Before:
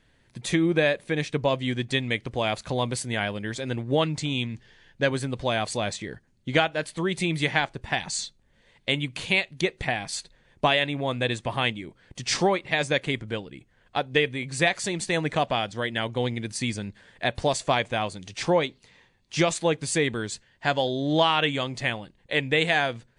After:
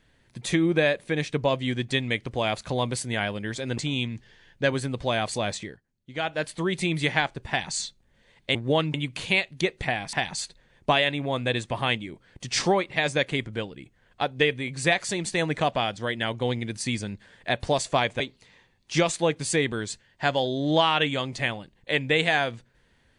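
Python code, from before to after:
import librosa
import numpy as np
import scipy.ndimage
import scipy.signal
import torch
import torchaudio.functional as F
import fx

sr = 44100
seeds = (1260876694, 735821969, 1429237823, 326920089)

y = fx.edit(x, sr, fx.move(start_s=3.78, length_s=0.39, to_s=8.94),
    fx.fade_down_up(start_s=6.01, length_s=0.7, db=-13.5, fade_s=0.15),
    fx.duplicate(start_s=7.88, length_s=0.25, to_s=10.13),
    fx.cut(start_s=17.95, length_s=0.67), tone=tone)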